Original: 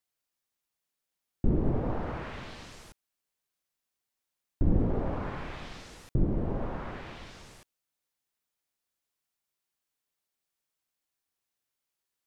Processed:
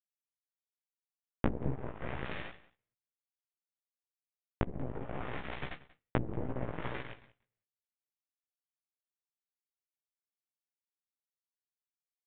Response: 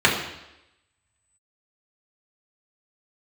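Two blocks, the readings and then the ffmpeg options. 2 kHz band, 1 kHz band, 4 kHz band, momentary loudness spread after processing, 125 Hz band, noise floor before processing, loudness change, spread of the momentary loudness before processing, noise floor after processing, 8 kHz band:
+1.0 dB, −3.0 dB, −2.5 dB, 9 LU, −8.0 dB, below −85 dBFS, −7.0 dB, 18 LU, below −85 dBFS, can't be measured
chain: -filter_complex "[0:a]agate=range=-37dB:threshold=-41dB:ratio=16:detection=peak,equalizer=frequency=125:width_type=o:width=1:gain=9,equalizer=frequency=500:width_type=o:width=1:gain=6,equalizer=frequency=2000:width_type=o:width=1:gain=9,acontrast=67,alimiter=limit=-13dB:level=0:latency=1:release=373,acompressor=threshold=-30dB:ratio=8,flanger=delay=6.7:depth=8.1:regen=-33:speed=0.29:shape=sinusoidal,aeval=exprs='0.112*(cos(1*acos(clip(val(0)/0.112,-1,1)))-cos(1*PI/2))+0.0251*(cos(3*acos(clip(val(0)/0.112,-1,1)))-cos(3*PI/2))+0.0178*(cos(4*acos(clip(val(0)/0.112,-1,1)))-cos(4*PI/2))+0.00398*(cos(7*acos(clip(val(0)/0.112,-1,1)))-cos(7*PI/2))':channel_layout=same,flanger=delay=15:depth=3.6:speed=2.3,asplit=2[link_01][link_02];[link_02]aecho=0:1:185:0.1[link_03];[link_01][link_03]amix=inputs=2:normalize=0,aresample=8000,aresample=44100,volume=11dB"

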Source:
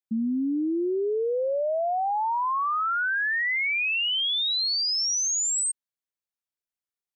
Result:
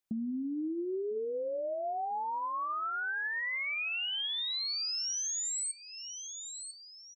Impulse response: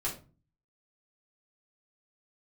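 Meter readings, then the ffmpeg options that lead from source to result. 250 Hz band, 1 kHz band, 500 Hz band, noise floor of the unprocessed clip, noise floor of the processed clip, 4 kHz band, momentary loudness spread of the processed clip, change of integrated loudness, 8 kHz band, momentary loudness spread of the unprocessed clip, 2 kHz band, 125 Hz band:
−9.0 dB, −9.0 dB, −9.0 dB, below −85 dBFS, −52 dBFS, −9.0 dB, 9 LU, −9.5 dB, −8.5 dB, 4 LU, −9.0 dB, can't be measured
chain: -filter_complex "[0:a]aecho=1:1:997|1994:0.0794|0.0278,asplit=2[link_01][link_02];[1:a]atrim=start_sample=2205[link_03];[link_02][link_03]afir=irnorm=-1:irlink=0,volume=-19dB[link_04];[link_01][link_04]amix=inputs=2:normalize=0,acompressor=threshold=-43dB:ratio=3,volume=4dB"

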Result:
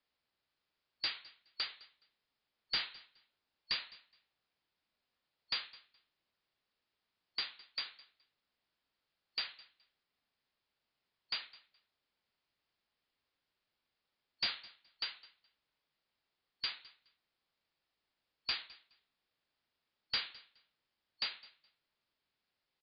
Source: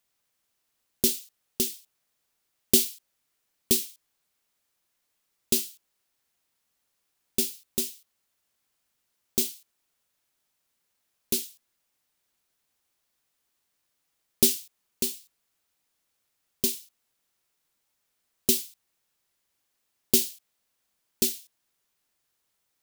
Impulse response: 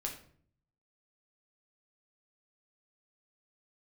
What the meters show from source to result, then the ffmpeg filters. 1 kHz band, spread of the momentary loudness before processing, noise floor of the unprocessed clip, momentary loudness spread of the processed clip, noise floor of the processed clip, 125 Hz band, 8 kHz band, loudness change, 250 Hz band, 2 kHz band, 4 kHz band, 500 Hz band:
can't be measured, 17 LU, −78 dBFS, 19 LU, below −85 dBFS, below −20 dB, below −40 dB, −13.5 dB, −32.0 dB, +2.5 dB, −4.5 dB, −26.5 dB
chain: -af "afftfilt=real='real(if(lt(b,272),68*(eq(floor(b/68),0)*1+eq(floor(b/68),1)*2+eq(floor(b/68),2)*3+eq(floor(b/68),3)*0)+mod(b,68),b),0)':imag='imag(if(lt(b,272),68*(eq(floor(b/68),0)*1+eq(floor(b/68),1)*2+eq(floor(b/68),2)*3+eq(floor(b/68),3)*0)+mod(b,68),b),0)':win_size=2048:overlap=0.75,aresample=11025,asoftclip=type=tanh:threshold=-23.5dB,aresample=44100,aecho=1:1:210|420:0.0891|0.0169,volume=-4.5dB"

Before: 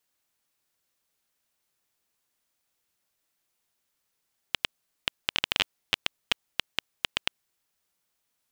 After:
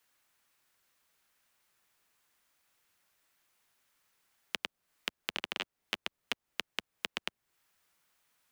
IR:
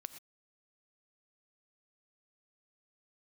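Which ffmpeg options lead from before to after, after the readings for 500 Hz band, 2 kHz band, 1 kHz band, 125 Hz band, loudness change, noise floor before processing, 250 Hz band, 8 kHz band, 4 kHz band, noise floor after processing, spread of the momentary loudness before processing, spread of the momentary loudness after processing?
−4.0 dB, −7.0 dB, −6.0 dB, −11.0 dB, −8.0 dB, −79 dBFS, −4.0 dB, −6.5 dB, −9.5 dB, below −85 dBFS, 8 LU, 5 LU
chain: -filter_complex "[0:a]acrossover=split=120|710[link_01][link_02][link_03];[link_01]acompressor=threshold=-49dB:ratio=4[link_04];[link_02]acompressor=threshold=-47dB:ratio=4[link_05];[link_03]acompressor=threshold=-41dB:ratio=4[link_06];[link_04][link_05][link_06]amix=inputs=3:normalize=0,acrossover=split=140|980|2400[link_07][link_08][link_09][link_10];[link_07]aeval=exprs='(mod(335*val(0)+1,2)-1)/335':channel_layout=same[link_11];[link_09]acontrast=88[link_12];[link_11][link_08][link_12][link_10]amix=inputs=4:normalize=0,volume=2.5dB"

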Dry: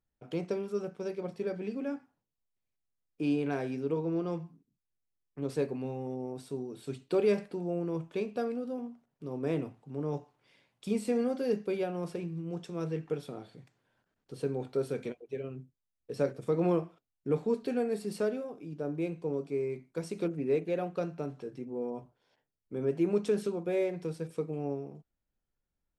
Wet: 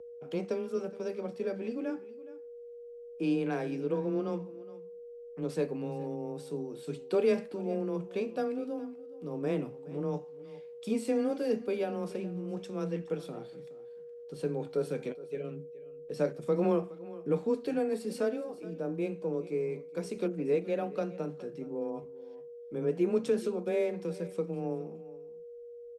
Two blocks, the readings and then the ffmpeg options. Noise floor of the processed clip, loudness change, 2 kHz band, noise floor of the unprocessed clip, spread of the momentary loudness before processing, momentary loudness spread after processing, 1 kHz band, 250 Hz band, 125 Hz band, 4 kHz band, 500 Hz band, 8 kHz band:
−47 dBFS, 0.0 dB, 0.0 dB, below −85 dBFS, 11 LU, 17 LU, +0.5 dB, 0.0 dB, −2.0 dB, 0.0 dB, +0.5 dB, 0.0 dB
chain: -af "aeval=exprs='val(0)+0.00631*sin(2*PI*460*n/s)':channel_layout=same,aecho=1:1:419:0.126,afreqshift=16"

